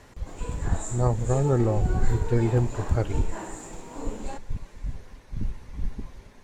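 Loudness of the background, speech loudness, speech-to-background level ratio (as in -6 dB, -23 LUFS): -38.0 LUFS, -27.5 LUFS, 10.5 dB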